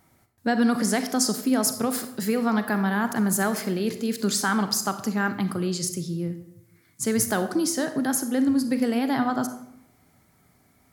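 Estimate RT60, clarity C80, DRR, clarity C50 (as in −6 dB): 0.75 s, 13.0 dB, 9.0 dB, 10.5 dB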